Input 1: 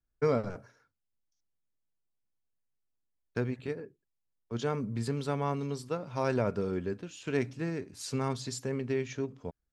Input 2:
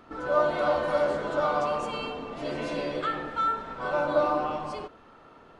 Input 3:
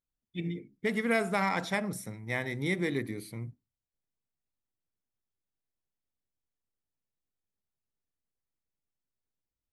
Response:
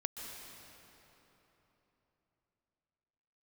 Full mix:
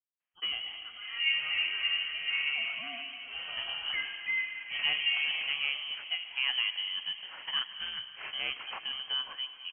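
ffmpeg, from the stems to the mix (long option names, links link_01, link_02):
-filter_complex "[0:a]acrusher=samples=9:mix=1:aa=0.000001:lfo=1:lforange=5.4:lforate=0.29,adelay=200,volume=-2dB,asplit=2[link_01][link_02];[link_02]volume=-5dB[link_03];[1:a]adelay=900,volume=-8.5dB,asplit=2[link_04][link_05];[link_05]volume=-5dB[link_06];[2:a]alimiter=level_in=3dB:limit=-24dB:level=0:latency=1,volume=-3dB,volume=-13dB,asplit=2[link_07][link_08];[link_08]apad=whole_len=437699[link_09];[link_01][link_09]sidechaincompress=threshold=-58dB:ratio=8:attack=49:release=911[link_10];[3:a]atrim=start_sample=2205[link_11];[link_03][link_06]amix=inputs=2:normalize=0[link_12];[link_12][link_11]afir=irnorm=-1:irlink=0[link_13];[link_10][link_04][link_07][link_13]amix=inputs=4:normalize=0,highpass=410,lowpass=frequency=2900:width_type=q:width=0.5098,lowpass=frequency=2900:width_type=q:width=0.6013,lowpass=frequency=2900:width_type=q:width=0.9,lowpass=frequency=2900:width_type=q:width=2.563,afreqshift=-3400"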